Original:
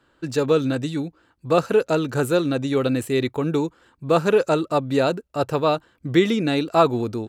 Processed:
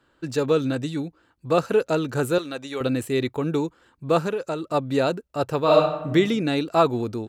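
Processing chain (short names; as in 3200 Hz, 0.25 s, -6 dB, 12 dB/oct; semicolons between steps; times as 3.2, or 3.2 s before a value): 2.38–2.81 HPF 870 Hz 6 dB/oct; 4.22–4.74 compressor 6:1, threshold -22 dBFS, peak gain reduction 9.5 dB; 5.62–6.08 reverb throw, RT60 0.9 s, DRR -4 dB; gain -2 dB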